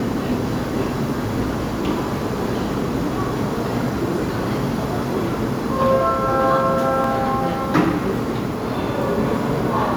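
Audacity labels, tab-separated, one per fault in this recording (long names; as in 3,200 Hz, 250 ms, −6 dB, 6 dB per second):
7.040000	7.040000	drop-out 2.5 ms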